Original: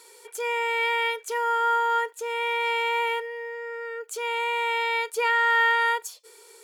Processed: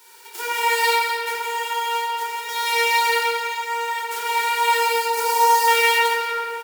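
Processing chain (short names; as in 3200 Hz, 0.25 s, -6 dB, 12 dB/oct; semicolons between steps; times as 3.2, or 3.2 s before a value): spectral whitening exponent 0.1; HPF 470 Hz 6 dB/oct; 0.93–2.49 compressor 3:1, threshold -33 dBFS, peak gain reduction 9.5 dB; 4.79–5.68 band shelf 2300 Hz -12 dB; echo 0.175 s -11 dB; shoebox room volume 170 m³, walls hard, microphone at 0.98 m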